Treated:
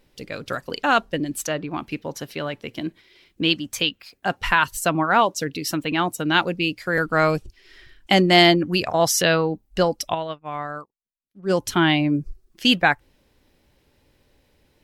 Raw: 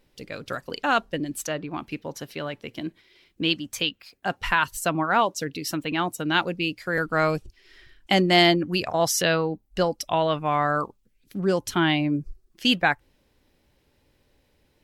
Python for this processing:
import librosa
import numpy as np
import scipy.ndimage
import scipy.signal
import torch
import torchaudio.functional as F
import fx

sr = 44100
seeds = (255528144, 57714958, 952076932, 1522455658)

y = fx.upward_expand(x, sr, threshold_db=-42.0, expansion=2.5, at=(10.13, 11.49), fade=0.02)
y = y * 10.0 ** (3.5 / 20.0)